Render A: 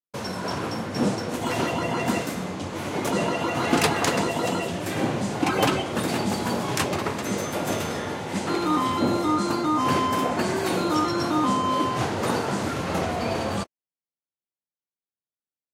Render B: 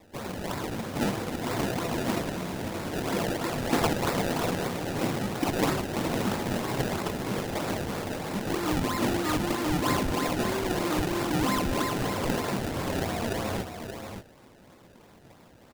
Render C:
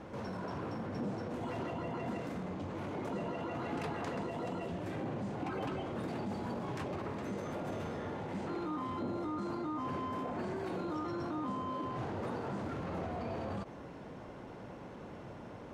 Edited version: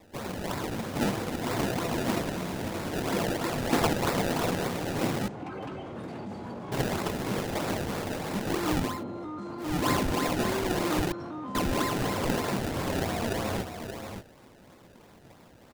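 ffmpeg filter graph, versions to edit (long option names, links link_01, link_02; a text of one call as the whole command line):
ffmpeg -i take0.wav -i take1.wav -i take2.wav -filter_complex "[2:a]asplit=3[link_01][link_02][link_03];[1:a]asplit=4[link_04][link_05][link_06][link_07];[link_04]atrim=end=5.282[link_08];[link_01]atrim=start=5.278:end=6.722[link_09];[link_05]atrim=start=6.718:end=9.04[link_10];[link_02]atrim=start=8.8:end=9.81[link_11];[link_06]atrim=start=9.57:end=11.122[link_12];[link_03]atrim=start=11.118:end=11.552[link_13];[link_07]atrim=start=11.548[link_14];[link_08][link_09]acrossfade=duration=0.004:curve1=hsin:curve2=hsin[link_15];[link_15][link_10]acrossfade=duration=0.004:curve1=hsin:curve2=hsin[link_16];[link_16][link_11]acrossfade=duration=0.24:curve1=tri:curve2=tri[link_17];[link_17][link_12]acrossfade=duration=0.24:curve1=tri:curve2=tri[link_18];[link_18][link_13]acrossfade=duration=0.004:curve1=hsin:curve2=hsin[link_19];[link_19][link_14]acrossfade=duration=0.004:curve1=hsin:curve2=hsin" out.wav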